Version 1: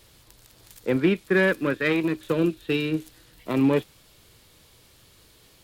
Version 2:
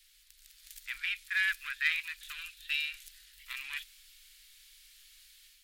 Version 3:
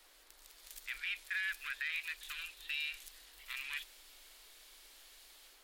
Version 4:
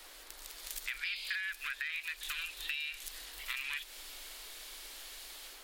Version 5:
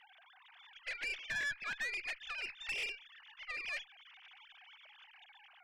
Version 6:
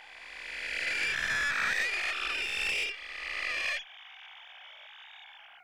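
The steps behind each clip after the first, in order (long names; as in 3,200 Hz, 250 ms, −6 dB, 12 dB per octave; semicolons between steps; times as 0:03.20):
inverse Chebyshev band-stop filter 100–620 Hz, stop band 60 dB; automatic gain control gain up to 5.5 dB; level −6 dB
brickwall limiter −27 dBFS, peak gain reduction 11.5 dB; noise in a band 280–2,200 Hz −69 dBFS; level −1 dB
downward compressor 6 to 1, threshold −46 dBFS, peak gain reduction 12 dB; sound drawn into the spectrogram noise, 0:01.04–0:01.36, 2,100–5,100 Hz −54 dBFS; level +10.5 dB
three sine waves on the formant tracks; tube saturation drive 36 dB, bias 0.6; level +2.5 dB
peak hold with a rise ahead of every peak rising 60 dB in 2.28 s; level +4 dB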